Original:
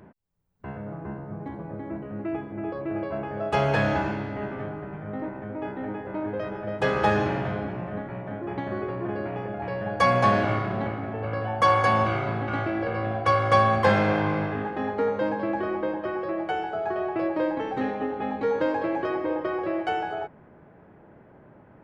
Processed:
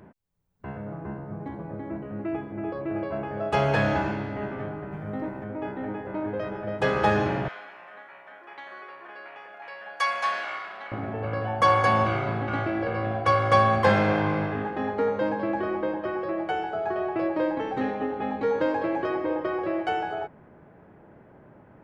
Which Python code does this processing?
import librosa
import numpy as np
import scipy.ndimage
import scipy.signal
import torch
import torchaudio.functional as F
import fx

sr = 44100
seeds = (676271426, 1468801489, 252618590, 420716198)

y = fx.bass_treble(x, sr, bass_db=2, treble_db=8, at=(4.91, 5.44))
y = fx.highpass(y, sr, hz=1300.0, slope=12, at=(7.48, 10.92))